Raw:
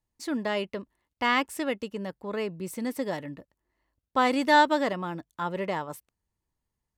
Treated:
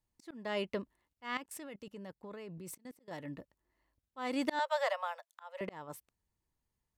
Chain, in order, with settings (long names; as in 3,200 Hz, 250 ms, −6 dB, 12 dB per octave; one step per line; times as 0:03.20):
0:04.59–0:05.61: Butterworth high-pass 520 Hz 96 dB per octave
volume swells 417 ms
0:01.37–0:03.11: output level in coarse steps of 22 dB
level −2 dB